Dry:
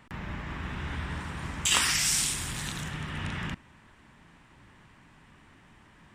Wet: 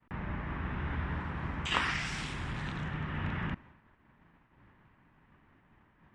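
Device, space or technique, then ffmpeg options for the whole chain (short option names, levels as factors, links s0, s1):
hearing-loss simulation: -af "lowpass=2000,agate=range=0.0224:threshold=0.00316:ratio=3:detection=peak"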